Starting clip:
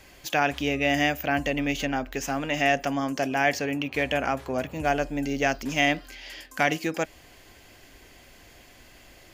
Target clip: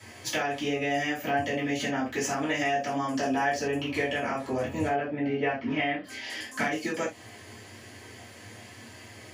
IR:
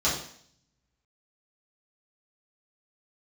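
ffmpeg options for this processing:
-filter_complex "[0:a]asettb=1/sr,asplit=3[link_01][link_02][link_03];[link_01]atrim=end=3.174[link_04];[link_02]atrim=start=3.17:end=3.87,asetpts=PTS-STARTPTS,afade=type=in:duration=0.004:curve=qsin,afade=type=out:start_time=0.696:duration=0.004:curve=qsin,equalizer=frequency=2200:width=7.5:gain=-9.5[link_05];[link_03]atrim=start=3.866[link_06];[link_04][link_05]acrossfade=duration=0.004:curve1=hsin:curve2=qsin[link_07];[link_07][link_06]acrossfade=duration=0.004:curve1=qsin:curve2=hsin,asettb=1/sr,asplit=3[link_08][link_09][link_10];[link_08]atrim=end=4.874[link_11];[link_09]atrim=start=4.87:end=6.04,asetpts=PTS-STARTPTS,afade=type=in:duration=0.004:curve=qsin,afade=type=out:start_time=1.166:duration=0.004:curve=qsin,lowpass=frequency=3000:width=0.5412,lowpass=frequency=3000:width=1.3066[link_12];[link_10]atrim=start=6.036[link_13];[link_11][link_12]acrossfade=duration=0.004:curve1=hsin:curve2=qsin[link_14];[link_14][link_13]acrossfade=duration=0.004:curve1=qsin:curve2=hsin,acompressor=threshold=-30dB:ratio=6[link_15];[1:a]atrim=start_sample=2205,atrim=end_sample=6174,asetrate=66150,aresample=44100[link_16];[link_15][link_16]afir=irnorm=-1:irlink=0,volume=-4dB"

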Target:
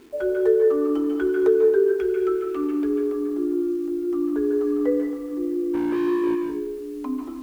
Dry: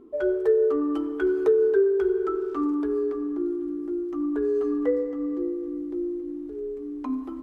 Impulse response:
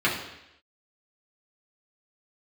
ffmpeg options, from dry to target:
-filter_complex "[0:a]asettb=1/sr,asplit=3[link_01][link_02][link_03];[link_01]atrim=end=1.994[link_04];[link_02]atrim=start=1.99:end=2.89,asetpts=PTS-STARTPTS,afade=type=in:duration=0.004:curve=qsin,afade=type=out:start_time=0.896:duration=0.004:curve=qsin,equalizer=frequency=160:width_type=o:width=0.67:gain=-6,equalizer=frequency=1000:width_type=o:width=0.67:gain=-7,equalizer=frequency=2500:width_type=o:width=0.67:gain=10[link_05];[link_03]atrim=start=2.886[link_06];[link_04][link_05]acrossfade=duration=0.004:curve1=hsin:curve2=qsin[link_07];[link_07][link_06]acrossfade=duration=0.004:curve1=qsin:curve2=hsin,asplit=3[link_08][link_09][link_10];[link_08]afade=type=out:start_time=5.73:duration=0.02[link_11];[link_09]asplit=2[link_12][link_13];[link_13]highpass=frequency=720:poles=1,volume=32dB,asoftclip=type=tanh:threshold=-21.5dB[link_14];[link_12][link_14]amix=inputs=2:normalize=0,lowpass=frequency=1900:poles=1,volume=-6dB,afade=type=in:start_time=5.73:duration=0.02,afade=type=out:start_time=6.34:duration=0.02[link_15];[link_10]afade=type=in:start_time=6.34:duration=0.02[link_16];[link_11][link_15][link_16]amix=inputs=3:normalize=0,acrusher=bits=8:mix=0:aa=0.000001,asplit=2[link_17][link_18];[1:a]atrim=start_sample=2205,adelay=141[link_19];[link_18][link_19]afir=irnorm=-1:irlink=0,volume=-17.5dB[link_20];[link_17][link_20]amix=inputs=2:normalize=0"

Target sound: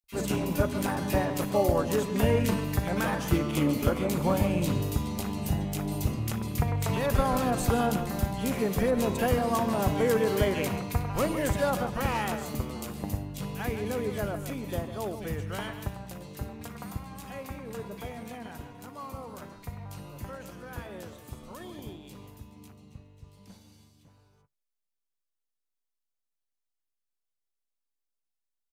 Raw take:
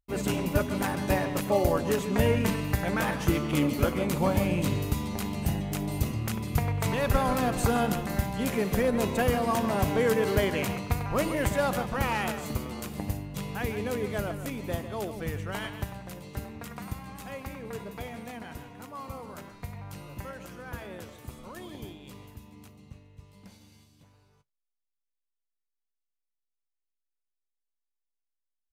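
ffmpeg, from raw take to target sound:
ffmpeg -i in.wav -filter_complex "[0:a]acrossover=split=2100[link_01][link_02];[link_01]adelay=40[link_03];[link_03][link_02]amix=inputs=2:normalize=0" out.wav

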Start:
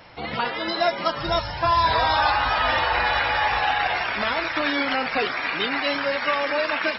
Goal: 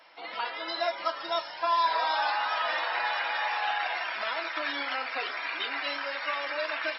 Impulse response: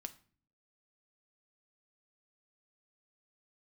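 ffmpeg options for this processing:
-filter_complex "[0:a]highpass=600[link_01];[1:a]atrim=start_sample=2205,asetrate=61740,aresample=44100[link_02];[link_01][link_02]afir=irnorm=-1:irlink=0"

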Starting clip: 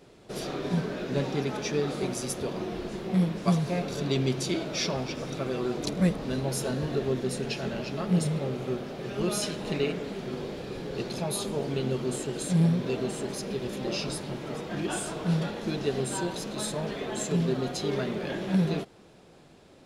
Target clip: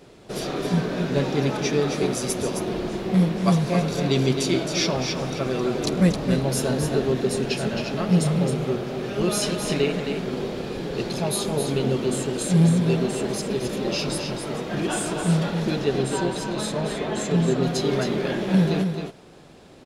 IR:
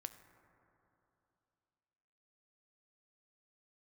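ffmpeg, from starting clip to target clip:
-filter_complex "[0:a]asettb=1/sr,asplit=3[link_01][link_02][link_03];[link_01]atrim=end=15.844[link_04];[link_02]atrim=start=15.84:end=17.63,asetpts=PTS-STARTPTS,afade=type=in:duration=0.004:curve=qsin,afade=type=out:start_time=1.786:duration=0.004:curve=qsin,highshelf=frequency=7800:gain=-10[link_05];[link_03]atrim=start=17.626[link_06];[link_04][link_05]acrossfade=duration=0.004:curve1=hsin:curve2=qsin[link_07];[link_07][link_06]acrossfade=duration=0.004:curve1=qsin:curve2=hsin,aecho=1:1:266:0.473,volume=5.5dB"

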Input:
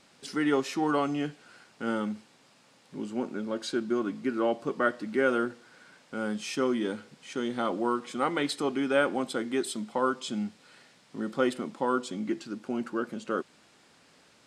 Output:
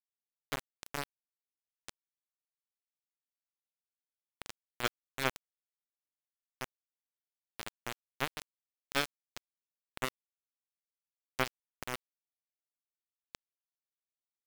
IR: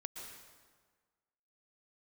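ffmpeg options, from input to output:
-af "aeval=exprs='0.266*(cos(1*acos(clip(val(0)/0.266,-1,1)))-cos(1*PI/2))+0.0335*(cos(2*acos(clip(val(0)/0.266,-1,1)))-cos(2*PI/2))+0.119*(cos(3*acos(clip(val(0)/0.266,-1,1)))-cos(3*PI/2))':channel_layout=same,acrusher=bits=4:mix=0:aa=0.000001,volume=13.5dB,asoftclip=hard,volume=-13.5dB,volume=1dB"

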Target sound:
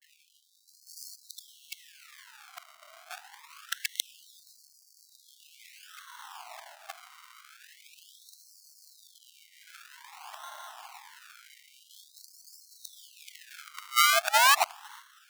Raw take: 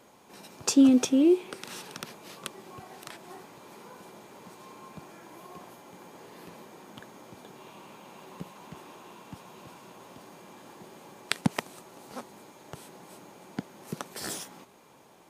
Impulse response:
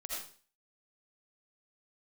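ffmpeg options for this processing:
-af "areverse,acrusher=samples=35:mix=1:aa=0.000001:lfo=1:lforange=35:lforate=0.45,afftfilt=real='re*gte(b*sr/1024,600*pow(4300/600,0.5+0.5*sin(2*PI*0.26*pts/sr)))':imag='im*gte(b*sr/1024,600*pow(4300/600,0.5+0.5*sin(2*PI*0.26*pts/sr)))':win_size=1024:overlap=0.75,volume=5.5dB"

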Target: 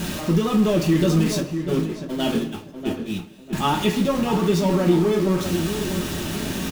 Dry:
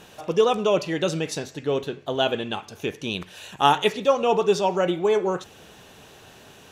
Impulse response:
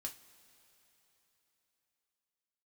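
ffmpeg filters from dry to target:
-filter_complex "[0:a]aeval=exprs='val(0)+0.5*0.0891*sgn(val(0))':channel_layout=same,asettb=1/sr,asplit=3[link_01][link_02][link_03];[link_01]atrim=end=1.404[link_04];[link_02]atrim=start=1.4:end=3.53,asetpts=PTS-STARTPTS,afade=type=in:duration=0.004:curve=qsin,afade=type=out:start_time=2.126:duration=0.004:curve=qsin,agate=range=-28dB:threshold=-21dB:ratio=16:detection=peak[link_05];[link_03]atrim=start=3.526[link_06];[link_04][link_05]acrossfade=duration=0.004:curve1=hsin:curve2=qsin[link_07];[link_07][link_06]acrossfade=duration=0.004:curve1=qsin:curve2=hsin,lowshelf=frequency=380:width_type=q:width=1.5:gain=8.5,asplit=2[link_08][link_09];[link_09]adelay=645,lowpass=frequency=1900:poles=1,volume=-8dB,asplit=2[link_10][link_11];[link_11]adelay=645,lowpass=frequency=1900:poles=1,volume=0.3,asplit=2[link_12][link_13];[link_13]adelay=645,lowpass=frequency=1900:poles=1,volume=0.3,asplit=2[link_14][link_15];[link_15]adelay=645,lowpass=frequency=1900:poles=1,volume=0.3[link_16];[link_08][link_10][link_12][link_14][link_16]amix=inputs=5:normalize=0[link_17];[1:a]atrim=start_sample=2205,afade=type=out:start_time=0.34:duration=0.01,atrim=end_sample=15435[link_18];[link_17][link_18]afir=irnorm=-1:irlink=0,volume=-2dB"

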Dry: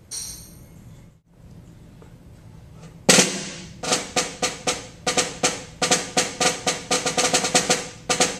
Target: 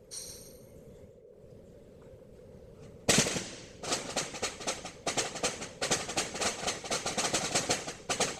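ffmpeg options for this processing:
ffmpeg -i in.wav -filter_complex "[0:a]aeval=exprs='val(0)+0.00631*sin(2*PI*480*n/s)':channel_layout=same,asplit=2[link_01][link_02];[link_02]adelay=174.9,volume=-9dB,highshelf=frequency=4000:gain=-3.94[link_03];[link_01][link_03]amix=inputs=2:normalize=0,afftfilt=real='hypot(re,im)*cos(2*PI*random(0))':imag='hypot(re,im)*sin(2*PI*random(1))':win_size=512:overlap=0.75,volume=-5dB" out.wav

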